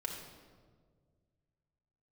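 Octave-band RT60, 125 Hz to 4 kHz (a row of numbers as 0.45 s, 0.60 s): 2.8 s, 2.2 s, 2.0 s, 1.4 s, 1.1 s, 1.0 s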